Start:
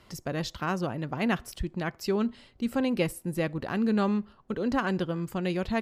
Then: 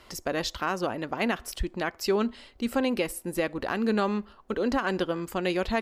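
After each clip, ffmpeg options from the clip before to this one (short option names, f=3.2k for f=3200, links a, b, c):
-af "equalizer=f=140:t=o:w=1.1:g=-15,alimiter=limit=-21dB:level=0:latency=1:release=155,volume=5.5dB"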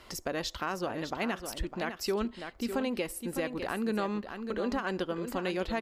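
-af "aecho=1:1:604:0.316,acompressor=threshold=-38dB:ratio=1.5"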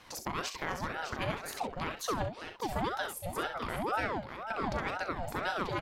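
-filter_complex "[0:a]asplit=2[a][b];[b]aecho=0:1:38|65:0.316|0.355[c];[a][c]amix=inputs=2:normalize=0,aeval=exprs='val(0)*sin(2*PI*730*n/s+730*0.55/2*sin(2*PI*2*n/s))':c=same"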